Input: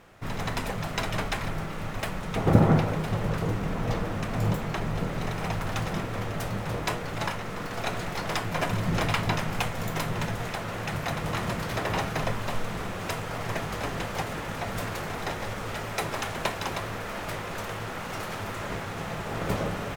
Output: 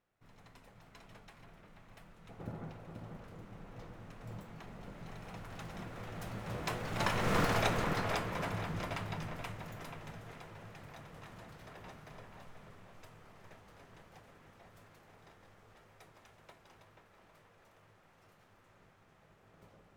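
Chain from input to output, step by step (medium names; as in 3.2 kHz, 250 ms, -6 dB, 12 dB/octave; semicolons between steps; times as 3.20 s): Doppler pass-by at 7.38 s, 10 m/s, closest 1.5 m; feedback echo behind a low-pass 483 ms, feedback 36%, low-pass 2.8 kHz, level -5 dB; trim +5 dB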